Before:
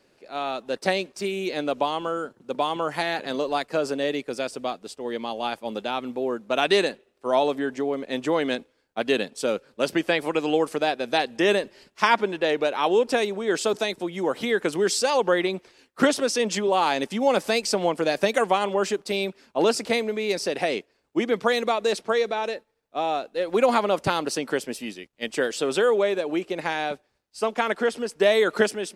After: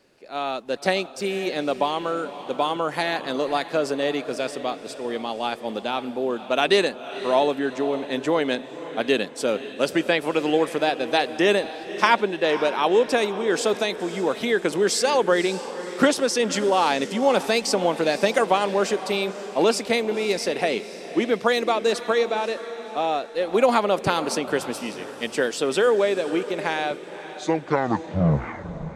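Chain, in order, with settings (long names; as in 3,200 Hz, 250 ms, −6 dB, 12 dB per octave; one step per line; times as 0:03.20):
turntable brake at the end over 1.95 s
feedback delay with all-pass diffusion 533 ms, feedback 47%, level −13 dB
level +1.5 dB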